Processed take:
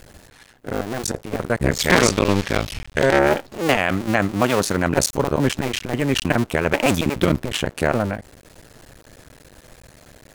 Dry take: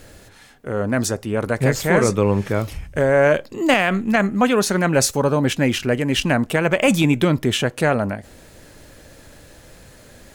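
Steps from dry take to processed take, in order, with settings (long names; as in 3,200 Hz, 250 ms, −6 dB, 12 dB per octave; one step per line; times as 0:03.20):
sub-harmonics by changed cycles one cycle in 2, muted
0:01.78–0:03.19: parametric band 3,900 Hz +11 dB 2.2 octaves
level +1 dB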